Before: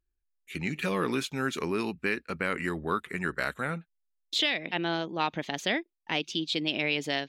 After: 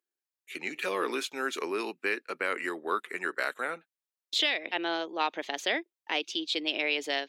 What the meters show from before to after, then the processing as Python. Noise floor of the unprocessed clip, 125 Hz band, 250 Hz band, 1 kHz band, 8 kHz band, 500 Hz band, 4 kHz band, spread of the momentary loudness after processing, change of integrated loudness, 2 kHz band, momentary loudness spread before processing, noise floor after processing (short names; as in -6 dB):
-80 dBFS, under -20 dB, -6.0 dB, 0.0 dB, 0.0 dB, -0.5 dB, 0.0 dB, 6 LU, -1.0 dB, 0.0 dB, 5 LU, under -85 dBFS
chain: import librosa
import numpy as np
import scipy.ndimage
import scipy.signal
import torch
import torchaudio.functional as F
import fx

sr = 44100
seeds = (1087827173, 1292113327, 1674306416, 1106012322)

y = scipy.signal.sosfilt(scipy.signal.butter(4, 330.0, 'highpass', fs=sr, output='sos'), x)